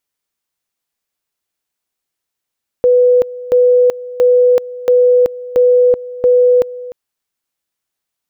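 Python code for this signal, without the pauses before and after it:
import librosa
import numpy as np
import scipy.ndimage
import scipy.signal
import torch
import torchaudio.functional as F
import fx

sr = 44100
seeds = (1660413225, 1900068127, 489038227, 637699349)

y = fx.two_level_tone(sr, hz=495.0, level_db=-6.0, drop_db=18.0, high_s=0.38, low_s=0.3, rounds=6)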